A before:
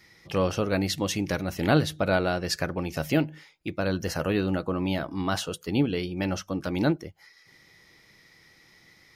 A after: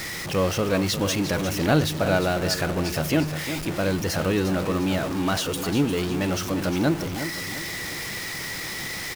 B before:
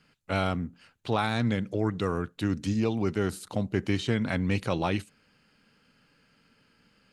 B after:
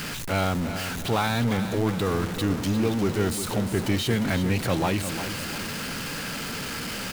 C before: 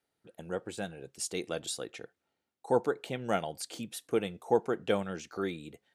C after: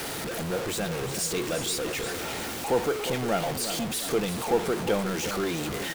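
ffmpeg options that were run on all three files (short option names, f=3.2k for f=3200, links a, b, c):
-filter_complex "[0:a]aeval=exprs='val(0)+0.5*0.0447*sgn(val(0))':c=same,asplit=2[a][b];[b]aecho=0:1:353|706|1059|1412|1765:0.316|0.142|0.064|0.0288|0.013[c];[a][c]amix=inputs=2:normalize=0"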